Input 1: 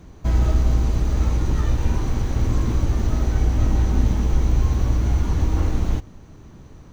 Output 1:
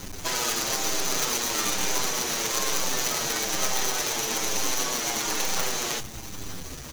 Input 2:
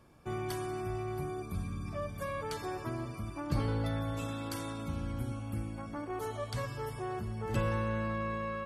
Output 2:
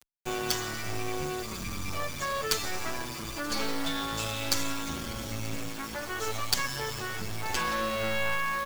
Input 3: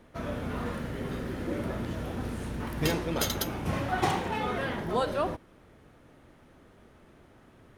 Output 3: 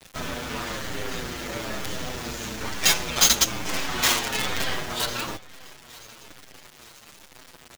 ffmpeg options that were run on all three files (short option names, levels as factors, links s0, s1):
-filter_complex "[0:a]afftfilt=real='re*lt(hypot(re,im),0.158)':imag='im*lt(hypot(re,im),0.158)':win_size=1024:overlap=0.75,asplit=2[s0][s1];[s1]acompressor=threshold=0.00631:ratio=6,volume=0.944[s2];[s0][s2]amix=inputs=2:normalize=0,crystalizer=i=8:c=0,aresample=16000,asoftclip=type=hard:threshold=0.15,aresample=44100,acrusher=bits=4:dc=4:mix=0:aa=0.000001,aecho=1:1:932|1864|2796|3728:0.0794|0.0405|0.0207|0.0105,asplit=2[s3][s4];[s4]adelay=7.2,afreqshift=-1.1[s5];[s3][s5]amix=inputs=2:normalize=1,volume=2"